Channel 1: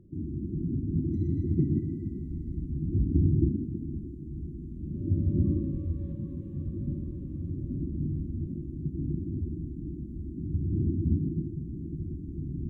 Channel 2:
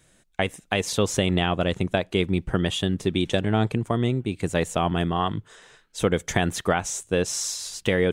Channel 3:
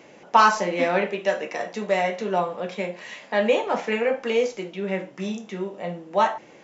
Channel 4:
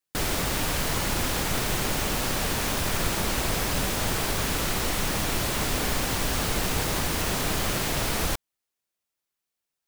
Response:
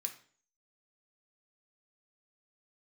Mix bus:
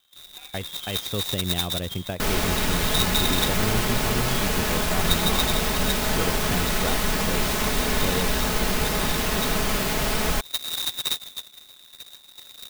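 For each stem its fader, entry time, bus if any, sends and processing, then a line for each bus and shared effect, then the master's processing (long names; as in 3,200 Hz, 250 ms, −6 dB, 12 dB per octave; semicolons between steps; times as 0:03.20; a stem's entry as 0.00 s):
+1.5 dB, 0.00 s, bus A, no send, spectral tilt −2.5 dB per octave; expander for the loud parts 2.5 to 1, over −27 dBFS
−9.5 dB, 0.15 s, no bus, no send, low-shelf EQ 110 Hz +11.5 dB
−11.5 dB, 0.00 s, bus A, no send, formant filter swept between two vowels a-i 1.1 Hz
+2.0 dB, 2.05 s, no bus, no send, comb filter 4.7 ms, depth 55%
bus A: 0.0 dB, voice inversion scrambler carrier 3,800 Hz; downward compressor, threshold −23 dBFS, peak gain reduction 13.5 dB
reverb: not used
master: converter with an unsteady clock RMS 0.028 ms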